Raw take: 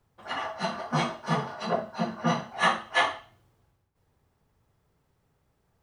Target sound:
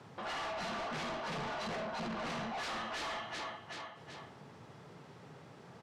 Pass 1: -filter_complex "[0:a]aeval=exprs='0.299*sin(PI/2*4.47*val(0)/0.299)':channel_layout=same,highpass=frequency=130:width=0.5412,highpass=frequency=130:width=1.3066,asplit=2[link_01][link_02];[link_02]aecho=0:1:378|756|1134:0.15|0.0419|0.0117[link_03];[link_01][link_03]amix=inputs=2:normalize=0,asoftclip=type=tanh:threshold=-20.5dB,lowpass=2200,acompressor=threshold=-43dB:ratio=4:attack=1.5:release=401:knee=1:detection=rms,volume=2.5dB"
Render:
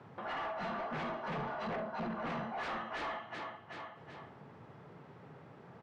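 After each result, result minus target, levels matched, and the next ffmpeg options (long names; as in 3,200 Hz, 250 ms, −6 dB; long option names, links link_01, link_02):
4,000 Hz band −7.5 dB; soft clipping: distortion −5 dB
-filter_complex "[0:a]aeval=exprs='0.299*sin(PI/2*4.47*val(0)/0.299)':channel_layout=same,highpass=frequency=130:width=0.5412,highpass=frequency=130:width=1.3066,asplit=2[link_01][link_02];[link_02]aecho=0:1:378|756|1134:0.15|0.0419|0.0117[link_03];[link_01][link_03]amix=inputs=2:normalize=0,asoftclip=type=tanh:threshold=-20.5dB,lowpass=5300,acompressor=threshold=-43dB:ratio=4:attack=1.5:release=401:knee=1:detection=rms,volume=2.5dB"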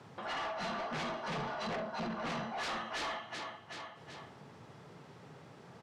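soft clipping: distortion −5 dB
-filter_complex "[0:a]aeval=exprs='0.299*sin(PI/2*4.47*val(0)/0.299)':channel_layout=same,highpass=frequency=130:width=0.5412,highpass=frequency=130:width=1.3066,asplit=2[link_01][link_02];[link_02]aecho=0:1:378|756|1134:0.15|0.0419|0.0117[link_03];[link_01][link_03]amix=inputs=2:normalize=0,asoftclip=type=tanh:threshold=-31dB,lowpass=5300,acompressor=threshold=-43dB:ratio=4:attack=1.5:release=401:knee=1:detection=rms,volume=2.5dB"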